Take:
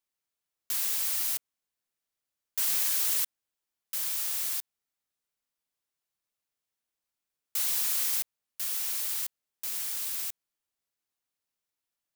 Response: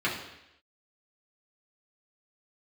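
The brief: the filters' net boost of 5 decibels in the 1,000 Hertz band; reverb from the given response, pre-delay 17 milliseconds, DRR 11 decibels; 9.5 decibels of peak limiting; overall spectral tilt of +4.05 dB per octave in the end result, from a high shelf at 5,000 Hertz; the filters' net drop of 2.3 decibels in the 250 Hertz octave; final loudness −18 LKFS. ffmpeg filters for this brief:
-filter_complex "[0:a]equalizer=frequency=250:width_type=o:gain=-3.5,equalizer=frequency=1000:width_type=o:gain=6,highshelf=frequency=5000:gain=7,alimiter=limit=-17.5dB:level=0:latency=1,asplit=2[link_01][link_02];[1:a]atrim=start_sample=2205,adelay=17[link_03];[link_02][link_03]afir=irnorm=-1:irlink=0,volume=-22.5dB[link_04];[link_01][link_04]amix=inputs=2:normalize=0,volume=8dB"

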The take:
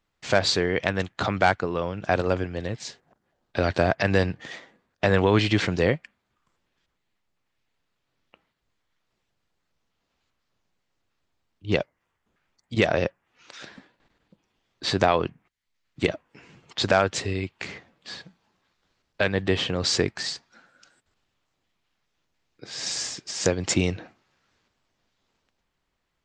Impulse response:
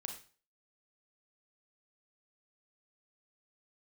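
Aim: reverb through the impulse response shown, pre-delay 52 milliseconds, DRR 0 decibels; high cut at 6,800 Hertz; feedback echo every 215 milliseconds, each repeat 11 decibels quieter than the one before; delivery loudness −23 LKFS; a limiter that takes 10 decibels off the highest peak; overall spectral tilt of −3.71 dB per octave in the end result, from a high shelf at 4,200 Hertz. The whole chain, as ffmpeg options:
-filter_complex "[0:a]lowpass=6800,highshelf=frequency=4200:gain=8,alimiter=limit=-11.5dB:level=0:latency=1,aecho=1:1:215|430|645:0.282|0.0789|0.0221,asplit=2[link_01][link_02];[1:a]atrim=start_sample=2205,adelay=52[link_03];[link_02][link_03]afir=irnorm=-1:irlink=0,volume=2dB[link_04];[link_01][link_04]amix=inputs=2:normalize=0,volume=0.5dB"

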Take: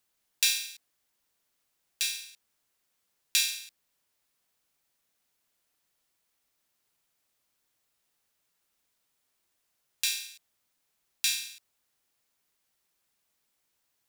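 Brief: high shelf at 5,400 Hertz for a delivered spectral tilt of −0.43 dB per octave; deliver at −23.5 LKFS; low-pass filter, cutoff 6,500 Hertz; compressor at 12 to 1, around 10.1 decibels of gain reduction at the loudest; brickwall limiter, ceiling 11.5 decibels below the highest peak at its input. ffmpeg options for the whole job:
ffmpeg -i in.wav -af "lowpass=6500,highshelf=frequency=5400:gain=5,acompressor=threshold=-30dB:ratio=12,volume=15.5dB,alimiter=limit=-5.5dB:level=0:latency=1" out.wav

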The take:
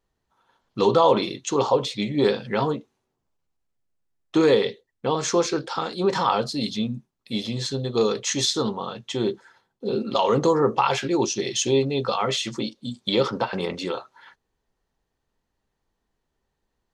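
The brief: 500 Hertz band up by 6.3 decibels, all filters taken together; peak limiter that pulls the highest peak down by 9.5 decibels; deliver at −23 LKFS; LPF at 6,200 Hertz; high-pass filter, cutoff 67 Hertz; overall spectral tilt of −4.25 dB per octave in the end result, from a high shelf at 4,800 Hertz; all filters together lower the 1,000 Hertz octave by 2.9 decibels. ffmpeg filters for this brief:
ffmpeg -i in.wav -af "highpass=67,lowpass=6200,equalizer=frequency=500:width_type=o:gain=8.5,equalizer=frequency=1000:width_type=o:gain=-6.5,highshelf=frequency=4800:gain=7,volume=-0.5dB,alimiter=limit=-11.5dB:level=0:latency=1" out.wav

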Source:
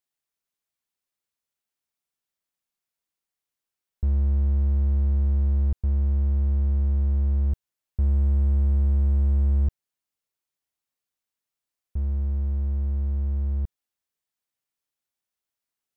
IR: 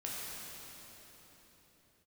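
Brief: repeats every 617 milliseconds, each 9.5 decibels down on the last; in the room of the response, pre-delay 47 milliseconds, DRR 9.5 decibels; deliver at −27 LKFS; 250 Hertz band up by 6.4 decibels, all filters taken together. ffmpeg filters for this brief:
-filter_complex "[0:a]equalizer=frequency=250:width_type=o:gain=8.5,aecho=1:1:617|1234|1851|2468:0.335|0.111|0.0365|0.012,asplit=2[link_01][link_02];[1:a]atrim=start_sample=2205,adelay=47[link_03];[link_02][link_03]afir=irnorm=-1:irlink=0,volume=-11.5dB[link_04];[link_01][link_04]amix=inputs=2:normalize=0,volume=-4.5dB"

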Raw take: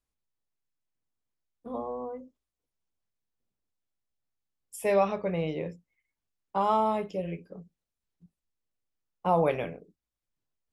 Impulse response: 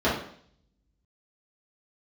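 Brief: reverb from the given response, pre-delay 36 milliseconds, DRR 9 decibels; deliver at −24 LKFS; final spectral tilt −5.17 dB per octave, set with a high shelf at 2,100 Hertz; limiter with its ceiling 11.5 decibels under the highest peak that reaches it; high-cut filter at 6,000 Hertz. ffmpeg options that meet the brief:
-filter_complex "[0:a]lowpass=6000,highshelf=frequency=2100:gain=-5,alimiter=level_in=1.5dB:limit=-24dB:level=0:latency=1,volume=-1.5dB,asplit=2[link_01][link_02];[1:a]atrim=start_sample=2205,adelay=36[link_03];[link_02][link_03]afir=irnorm=-1:irlink=0,volume=-25dB[link_04];[link_01][link_04]amix=inputs=2:normalize=0,volume=11.5dB"

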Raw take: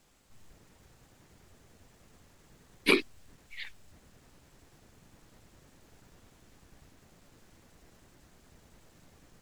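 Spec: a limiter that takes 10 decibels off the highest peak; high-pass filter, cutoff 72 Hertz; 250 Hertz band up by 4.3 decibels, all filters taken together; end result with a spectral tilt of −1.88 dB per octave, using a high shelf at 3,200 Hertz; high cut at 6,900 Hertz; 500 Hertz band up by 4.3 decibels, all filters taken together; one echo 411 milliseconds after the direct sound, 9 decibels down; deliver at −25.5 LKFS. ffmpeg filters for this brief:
ffmpeg -i in.wav -af "highpass=72,lowpass=6900,equalizer=frequency=250:width_type=o:gain=4,equalizer=frequency=500:width_type=o:gain=4,highshelf=frequency=3200:gain=4.5,alimiter=limit=-16dB:level=0:latency=1,aecho=1:1:411:0.355,volume=9.5dB" out.wav

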